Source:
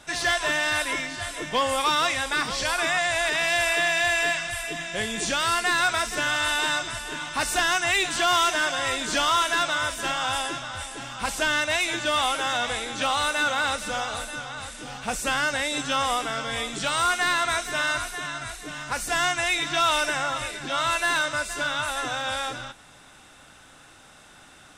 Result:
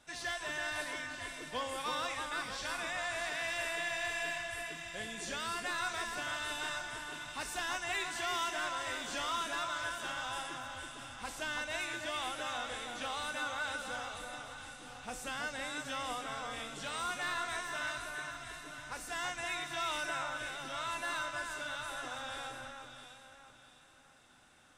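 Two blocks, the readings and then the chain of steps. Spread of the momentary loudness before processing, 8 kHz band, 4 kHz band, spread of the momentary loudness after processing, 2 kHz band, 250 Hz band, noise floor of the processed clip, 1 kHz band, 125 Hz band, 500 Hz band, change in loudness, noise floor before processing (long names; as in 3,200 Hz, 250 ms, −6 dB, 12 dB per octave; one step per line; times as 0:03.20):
10 LU, −14.0 dB, −14.0 dB, 9 LU, −13.0 dB, −13.0 dB, −59 dBFS, −13.0 dB, −13.5 dB, −13.5 dB, −13.5 dB, −51 dBFS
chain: tuned comb filter 250 Hz, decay 0.9 s, mix 70%
delay that swaps between a low-pass and a high-pass 329 ms, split 2,200 Hz, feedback 58%, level −4 dB
level −5 dB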